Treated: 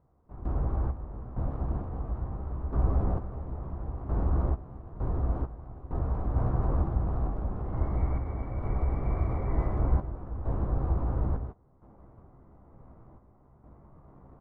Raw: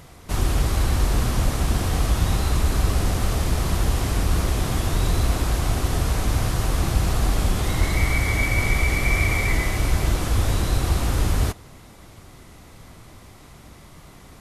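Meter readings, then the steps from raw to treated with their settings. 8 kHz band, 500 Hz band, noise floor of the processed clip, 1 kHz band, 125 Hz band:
under -40 dB, -8.5 dB, -60 dBFS, -10.0 dB, -8.0 dB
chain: LPF 1100 Hz 24 dB/oct; random-step tremolo 2.2 Hz, depth 85%; in parallel at -10.5 dB: crossover distortion -42.5 dBFS; on the sum: doubler 15 ms -8.5 dB; gain -6.5 dB

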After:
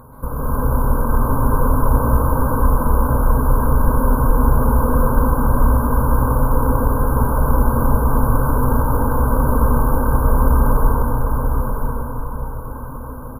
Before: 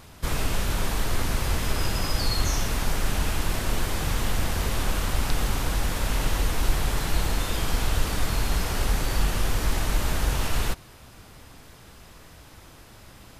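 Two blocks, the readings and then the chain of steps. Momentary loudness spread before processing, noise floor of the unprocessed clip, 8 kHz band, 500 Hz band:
2 LU, -49 dBFS, -5.5 dB, +12.5 dB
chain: FFT band-reject 1600–10000 Hz; ripple EQ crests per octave 1, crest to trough 12 dB; compressor, threshold -26 dBFS, peak gain reduction 10 dB; on a send: echo 0.988 s -5.5 dB; on the sum: plate-style reverb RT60 4.3 s, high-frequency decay 0.5×, pre-delay 0.115 s, DRR -7.5 dB; gain +6 dB

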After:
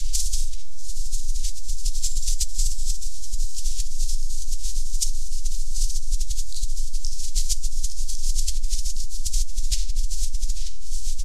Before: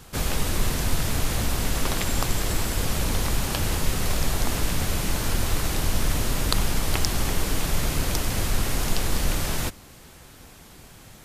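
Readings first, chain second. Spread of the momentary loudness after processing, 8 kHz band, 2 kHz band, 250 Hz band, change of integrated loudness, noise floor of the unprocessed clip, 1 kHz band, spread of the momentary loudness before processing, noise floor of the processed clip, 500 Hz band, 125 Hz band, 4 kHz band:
6 LU, +1.5 dB, -22.5 dB, under -25 dB, -3.5 dB, -48 dBFS, under -40 dB, 1 LU, -20 dBFS, under -40 dB, -6.0 dB, -3.5 dB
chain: wind noise 640 Hz -18 dBFS; inverse Chebyshev band-stop 120–1200 Hz, stop band 80 dB; high shelf 7100 Hz -6.5 dB; feedback echo 0.852 s, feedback 50%, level -9 dB; chorus 2.8 Hz, delay 18.5 ms, depth 2.4 ms; air absorption 87 m; Schroeder reverb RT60 0.35 s, combs from 28 ms, DRR 2 dB; fast leveller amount 100%; gain -5.5 dB

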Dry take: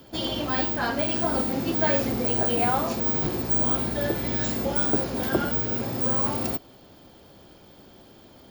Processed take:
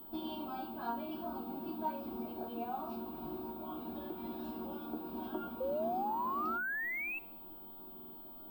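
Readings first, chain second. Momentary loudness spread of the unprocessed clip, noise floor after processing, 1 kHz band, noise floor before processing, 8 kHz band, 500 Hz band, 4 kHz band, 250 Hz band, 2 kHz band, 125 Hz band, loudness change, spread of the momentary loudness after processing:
4 LU, -51 dBFS, -8.0 dB, -51 dBFS, under -35 dB, -13.5 dB, -21.5 dB, -13.0 dB, -7.5 dB, -24.5 dB, -15.5 dB, 13 LU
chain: notches 60/120/180/240 Hz; compressor 2.5:1, threshold -38 dBFS, peak gain reduction 13.5 dB; fixed phaser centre 510 Hz, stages 6; resonator bank D#3 minor, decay 0.22 s; painted sound rise, 5.6–7.19, 510–2700 Hz -48 dBFS; air absorption 350 m; thin delay 67 ms, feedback 53%, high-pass 3100 Hz, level -21 dB; stuck buffer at 7.95, samples 2048, times 3; pulse-width modulation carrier 16000 Hz; gain +13.5 dB

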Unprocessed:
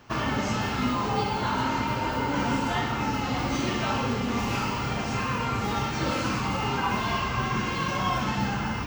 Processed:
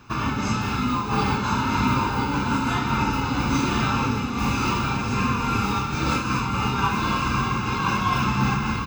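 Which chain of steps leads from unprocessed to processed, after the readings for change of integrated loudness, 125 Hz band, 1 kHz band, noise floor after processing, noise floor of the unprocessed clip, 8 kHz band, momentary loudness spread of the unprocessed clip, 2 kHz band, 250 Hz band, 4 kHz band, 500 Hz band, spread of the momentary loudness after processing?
+4.0 dB, +5.0 dB, +4.0 dB, -27 dBFS, -30 dBFS, +3.5 dB, 2 LU, +3.0 dB, +4.5 dB, +2.0 dB, -0.5 dB, 2 LU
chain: comb 0.8 ms, depth 61%; echo 1.011 s -3.5 dB; noise-modulated level, depth 55%; gain +3 dB

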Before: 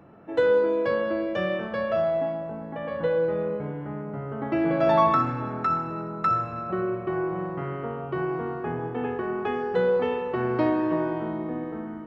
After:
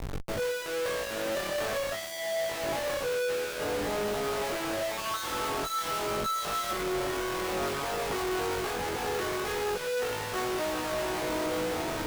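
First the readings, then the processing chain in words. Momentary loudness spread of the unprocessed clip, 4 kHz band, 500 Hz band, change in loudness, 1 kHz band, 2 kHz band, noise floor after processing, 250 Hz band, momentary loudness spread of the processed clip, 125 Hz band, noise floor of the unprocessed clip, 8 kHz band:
11 LU, +10.5 dB, -5.5 dB, -4.5 dB, -5.0 dB, +1.0 dB, -36 dBFS, -8.5 dB, 2 LU, -9.0 dB, -36 dBFS, n/a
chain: HPF 410 Hz 24 dB/oct; reverse; compressor, threshold -32 dBFS, peak gain reduction 15 dB; reverse; Schmitt trigger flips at -49 dBFS; chorus 0.48 Hz, delay 19 ms, depth 3.4 ms; gain +7 dB

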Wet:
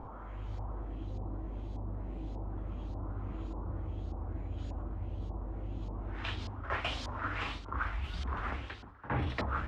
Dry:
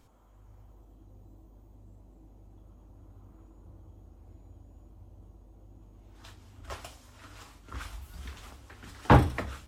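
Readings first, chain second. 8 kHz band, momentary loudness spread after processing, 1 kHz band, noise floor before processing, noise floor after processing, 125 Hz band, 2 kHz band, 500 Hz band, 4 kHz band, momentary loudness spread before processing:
-7.5 dB, 7 LU, -5.5 dB, -56 dBFS, -46 dBFS, -4.0 dB, 0.0 dB, -7.0 dB, +3.0 dB, 23 LU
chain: pre-echo 63 ms -17 dB; reverse; compressor 8:1, threshold -48 dBFS, peak gain reduction 33 dB; reverse; LFO low-pass saw up 1.7 Hz 860–4600 Hz; spectral gain 4.58–4.82, 1200–9200 Hz +7 dB; gain +14.5 dB

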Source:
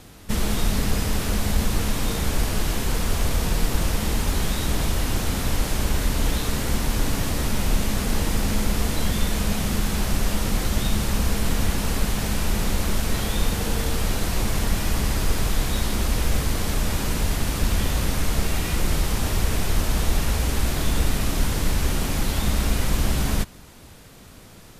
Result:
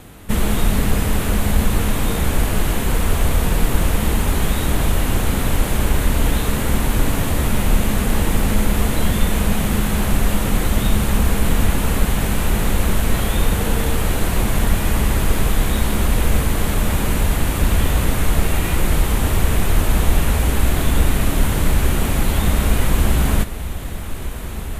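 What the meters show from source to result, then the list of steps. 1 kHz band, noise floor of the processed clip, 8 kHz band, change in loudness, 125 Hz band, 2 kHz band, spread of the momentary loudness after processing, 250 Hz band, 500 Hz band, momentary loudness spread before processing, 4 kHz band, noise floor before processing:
+5.5 dB, -25 dBFS, +2.5 dB, +5.0 dB, +6.0 dB, +5.0 dB, 2 LU, +5.5 dB, +6.0 dB, 1 LU, +1.5 dB, -45 dBFS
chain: bell 5200 Hz -10.5 dB 0.76 oct; on a send: diffused feedback echo 1.379 s, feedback 79%, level -15 dB; on the sum: gain +5.5 dB

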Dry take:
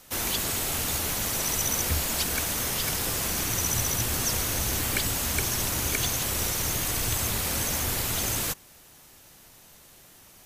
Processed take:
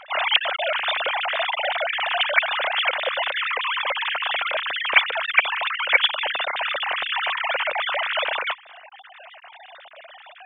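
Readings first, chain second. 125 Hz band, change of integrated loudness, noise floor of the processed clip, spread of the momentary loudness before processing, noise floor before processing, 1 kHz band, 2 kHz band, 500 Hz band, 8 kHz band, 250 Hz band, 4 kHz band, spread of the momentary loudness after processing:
under -35 dB, +4.0 dB, -47 dBFS, 2 LU, -53 dBFS, +11.0 dB, +13.0 dB, +7.5 dB, under -40 dB, under -20 dB, +7.5 dB, 6 LU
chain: sine-wave speech; in parallel at -1 dB: compressor, threshold -38 dBFS, peak gain reduction 22.5 dB; on the sum: gain +2.5 dB

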